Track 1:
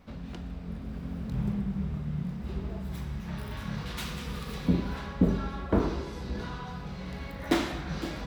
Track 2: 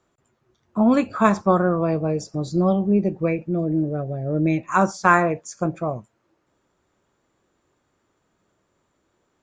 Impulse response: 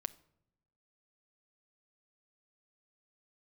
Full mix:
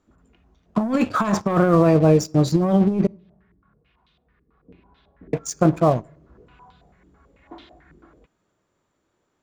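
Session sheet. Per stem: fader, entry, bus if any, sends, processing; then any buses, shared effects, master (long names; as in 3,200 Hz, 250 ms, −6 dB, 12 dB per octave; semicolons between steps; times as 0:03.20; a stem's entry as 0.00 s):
0:04.26 −18.5 dB → 0:05.00 −12 dB → 0:06.34 −12 dB → 0:06.97 −21 dB, 0.00 s, send −14.5 dB, comb filter 2.8 ms, depth 33%; low-pass on a step sequencer 9.1 Hz 340–3,600 Hz; automatic ducking −20 dB, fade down 2.00 s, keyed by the second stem
−4.0 dB, 0.00 s, muted 0:03.07–0:05.33, send −6.5 dB, leveller curve on the samples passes 2; compressor whose output falls as the input rises −14 dBFS, ratio −0.5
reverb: on, pre-delay 7 ms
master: no processing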